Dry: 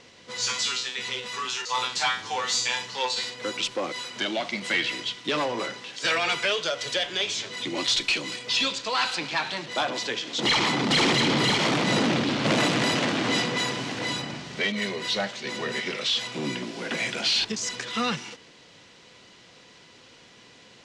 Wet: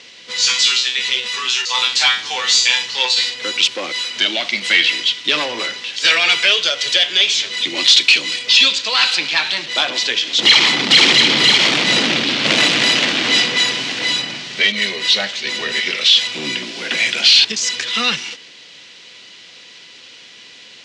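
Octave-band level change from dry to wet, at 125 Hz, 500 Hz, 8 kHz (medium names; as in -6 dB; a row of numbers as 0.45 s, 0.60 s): -1.5 dB, +2.5 dB, +10.5 dB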